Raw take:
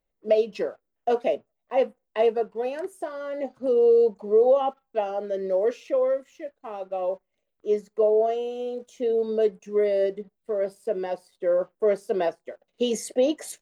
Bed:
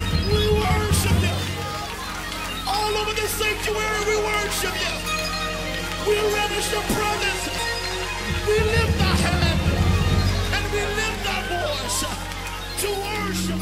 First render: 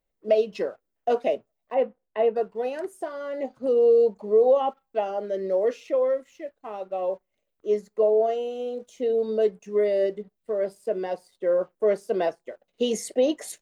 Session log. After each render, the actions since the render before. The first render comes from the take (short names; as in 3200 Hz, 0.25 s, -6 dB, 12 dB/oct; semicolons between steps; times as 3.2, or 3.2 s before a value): 1.74–2.36 air absorption 360 m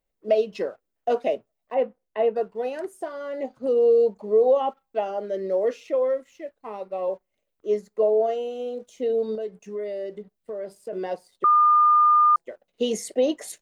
6.6–7.08 ripple EQ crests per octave 0.91, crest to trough 7 dB; 9.35–10.93 compressor 2.5:1, threshold -32 dBFS; 11.44–12.36 bleep 1210 Hz -13.5 dBFS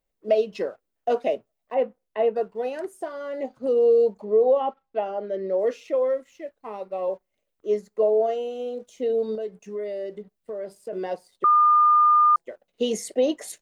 4.24–5.59 air absorption 160 m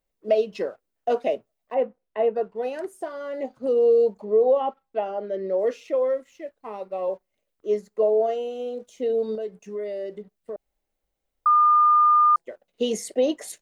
1.74–2.61 high shelf 4200 Hz -> 5700 Hz -10.5 dB; 10.56–11.46 room tone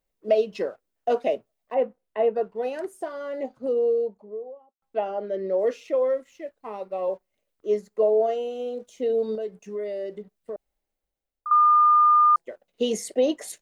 3.17–4.82 studio fade out; 10.51–11.51 fade out, to -14 dB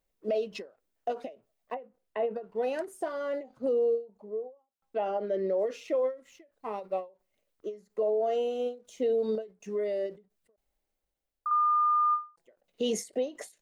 limiter -21.5 dBFS, peak gain reduction 11 dB; ending taper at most 200 dB/s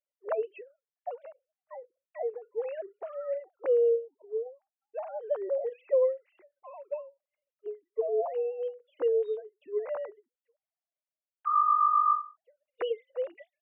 sine-wave speech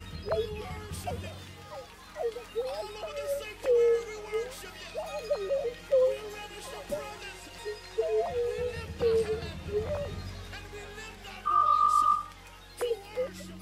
add bed -19.5 dB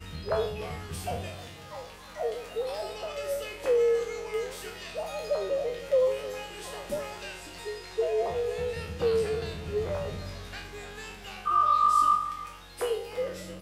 spectral trails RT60 0.54 s; outdoor echo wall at 53 m, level -16 dB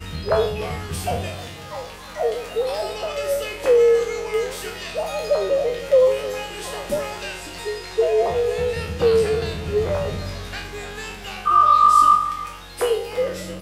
gain +9 dB